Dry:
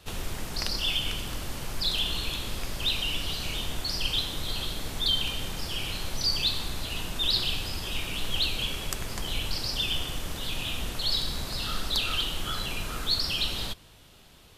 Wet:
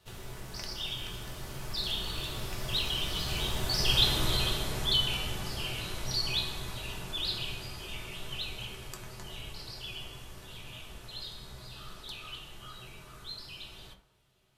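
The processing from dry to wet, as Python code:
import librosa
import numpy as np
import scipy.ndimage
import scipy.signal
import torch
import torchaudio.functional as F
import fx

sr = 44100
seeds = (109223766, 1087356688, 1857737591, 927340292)

y = fx.doppler_pass(x, sr, speed_mps=14, closest_m=5.5, pass_at_s=4.19)
y = fx.rev_fdn(y, sr, rt60_s=0.59, lf_ratio=0.8, hf_ratio=0.45, size_ms=47.0, drr_db=0.0)
y = fx.rider(y, sr, range_db=4, speed_s=2.0)
y = F.gain(torch.from_numpy(y), 5.0).numpy()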